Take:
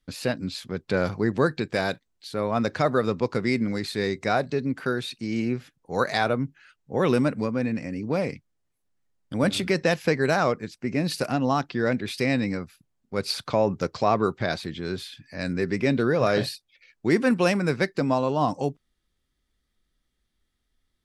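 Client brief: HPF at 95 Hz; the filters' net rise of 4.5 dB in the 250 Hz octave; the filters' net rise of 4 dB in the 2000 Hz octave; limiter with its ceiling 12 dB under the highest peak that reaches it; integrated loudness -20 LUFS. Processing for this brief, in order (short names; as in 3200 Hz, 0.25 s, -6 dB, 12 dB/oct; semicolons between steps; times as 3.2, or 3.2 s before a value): HPF 95 Hz; bell 250 Hz +5.5 dB; bell 2000 Hz +5 dB; gain +8.5 dB; limiter -9 dBFS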